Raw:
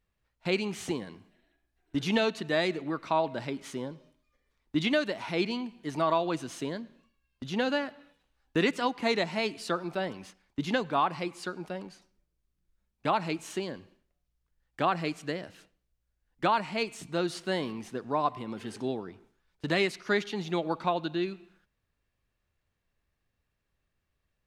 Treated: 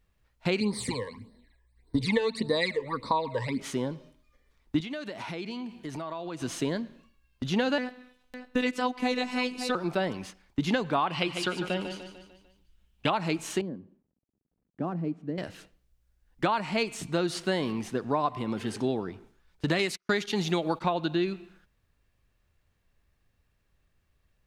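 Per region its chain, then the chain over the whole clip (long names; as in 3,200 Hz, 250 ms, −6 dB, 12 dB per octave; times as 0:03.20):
0:00.60–0:03.60: EQ curve with evenly spaced ripples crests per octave 0.96, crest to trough 14 dB + all-pass phaser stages 12, 1.7 Hz, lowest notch 220–2,600 Hz
0:04.80–0:06.42: high-pass filter 44 Hz + downward compressor 5 to 1, threshold −40 dBFS
0:07.78–0:09.75: phases set to zero 250 Hz + single-tap delay 558 ms −12.5 dB
0:11.07–0:13.10: parametric band 3,000 Hz +13.5 dB 0.5 octaves + repeating echo 149 ms, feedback 48%, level −9.5 dB
0:13.61–0:15.38: variable-slope delta modulation 64 kbit/s + resonant band-pass 220 Hz, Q 1.6
0:19.79–0:20.82: noise gate −42 dBFS, range −43 dB + high-shelf EQ 4,100 Hz +8.5 dB
whole clip: low-shelf EQ 110 Hz +5.5 dB; downward compressor, threshold −28 dBFS; level +5.5 dB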